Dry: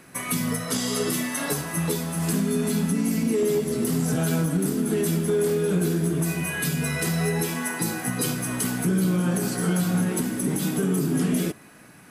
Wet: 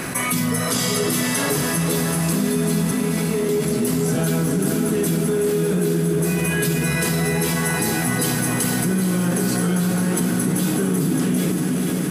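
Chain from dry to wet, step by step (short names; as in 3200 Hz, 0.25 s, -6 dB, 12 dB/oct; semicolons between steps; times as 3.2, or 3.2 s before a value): 2.91–3.49 BPF 520–3100 Hz; diffused feedback echo 0.491 s, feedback 60%, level -6 dB; fast leveller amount 70%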